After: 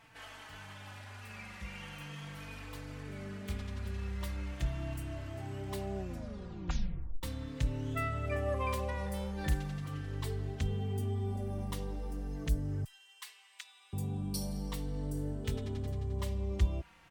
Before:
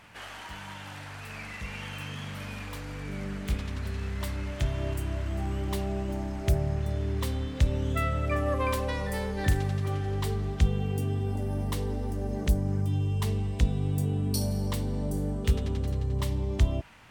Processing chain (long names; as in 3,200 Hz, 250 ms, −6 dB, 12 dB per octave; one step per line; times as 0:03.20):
0:05.96: tape stop 1.27 s
0:12.84–0:13.93: high-pass filter 1,300 Hz 24 dB per octave
barber-pole flanger 4 ms −0.4 Hz
level −4 dB